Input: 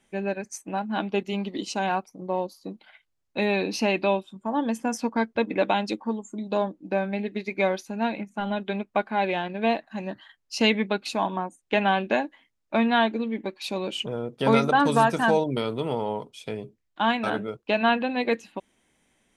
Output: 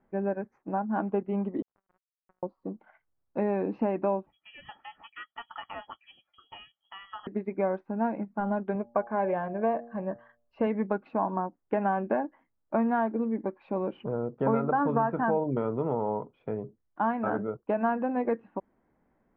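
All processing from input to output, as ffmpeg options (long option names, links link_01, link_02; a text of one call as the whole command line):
ffmpeg -i in.wav -filter_complex "[0:a]asettb=1/sr,asplit=3[link_01][link_02][link_03];[link_01]atrim=end=1.624[link_04];[link_02]atrim=start=1.62:end=2.43,asetpts=PTS-STARTPTS,afade=type=in:duration=0.004:curve=qsin,afade=type=out:start_time=0.806:duration=0.004:curve=qsin,lowpass=5700,acompressor=threshold=-43dB:ratio=4:attack=3.2:release=140:knee=1:detection=peak,acrusher=bits=4:mix=0:aa=0.5[link_05];[link_03]atrim=start=2.426[link_06];[link_04][link_05]acrossfade=duration=0.004:curve1=hsin:curve2=qsin[link_07];[link_07][link_06]acrossfade=duration=0.004:curve1=qsin:curve2=hsin,asettb=1/sr,asplit=3[link_08][link_09][link_10];[link_08]atrim=end=4.264[link_11];[link_09]atrim=start=4.26:end=7.27,asetpts=PTS-STARTPTS,afade=type=in:duration=0.004:curve=qsin,afade=type=out:start_time=3.006:duration=0.004:curve=qsin,aecho=1:1:1.8:0.66,atrim=end_sample=132741,lowpass=frequency=3000:width_type=q:width=0.5098,lowpass=frequency=3000:width_type=q:width=0.6013,lowpass=frequency=3000:width_type=q:width=0.9,lowpass=frequency=3000:width_type=q:width=2.563,afreqshift=-3500[link_12];[link_10]atrim=start=7.266[link_13];[link_11][link_12]acrossfade=duration=0.004:curve1=hsin:curve2=qsin[link_14];[link_14][link_13]acrossfade=duration=0.004:curve1=qsin:curve2=hsin,asettb=1/sr,asplit=3[link_15][link_16][link_17];[link_15]atrim=end=8.754[link_18];[link_16]atrim=start=8.75:end=10.67,asetpts=PTS-STARTPTS,afade=type=in:duration=0.004:curve=qsin,afade=type=out:start_time=1.916:duration=0.004:curve=qsin,lowpass=4500,aecho=1:1:1.8:0.39,atrim=end_sample=84672,bandreject=frequency=117.6:width_type=h:width=4,bandreject=frequency=235.2:width_type=h:width=4,bandreject=frequency=352.8:width_type=h:width=4,bandreject=frequency=470.4:width_type=h:width=4,bandreject=frequency=588:width_type=h:width=4,bandreject=frequency=705.6:width_type=h:width=4,bandreject=frequency=823.2:width_type=h:width=4[link_19];[link_17]atrim=start=10.666[link_20];[link_18][link_19]acrossfade=duration=0.004:curve1=hsin:curve2=qsin[link_21];[link_21][link_20]acrossfade=duration=0.004:curve1=qsin:curve2=hsin,acompressor=threshold=-23dB:ratio=3,lowpass=frequency=1400:width=0.5412,lowpass=frequency=1400:width=1.3066" out.wav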